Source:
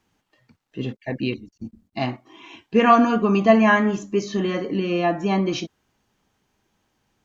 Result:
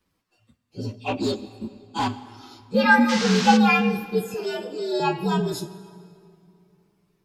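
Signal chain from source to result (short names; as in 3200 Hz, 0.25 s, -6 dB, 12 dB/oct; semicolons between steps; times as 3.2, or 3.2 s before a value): inharmonic rescaling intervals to 120%; 0.94–2.08 overdrive pedal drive 20 dB, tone 2300 Hz, clips at -14.5 dBFS; 3.08–3.56 band noise 870–5900 Hz -29 dBFS; 4.34–5 steep high-pass 330 Hz; reverb RT60 2.6 s, pre-delay 79 ms, DRR 16 dB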